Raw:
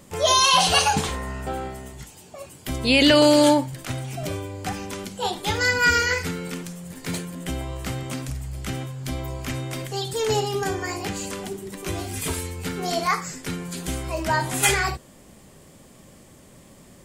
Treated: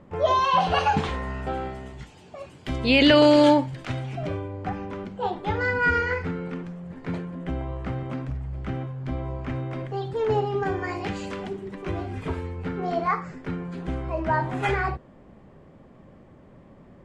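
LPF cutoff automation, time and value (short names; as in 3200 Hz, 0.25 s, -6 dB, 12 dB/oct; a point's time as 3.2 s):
0.69 s 1500 Hz
1.17 s 3400 Hz
3.97 s 3400 Hz
4.5 s 1500 Hz
10.46 s 1500 Hz
11.16 s 3200 Hz
12.2 s 1500 Hz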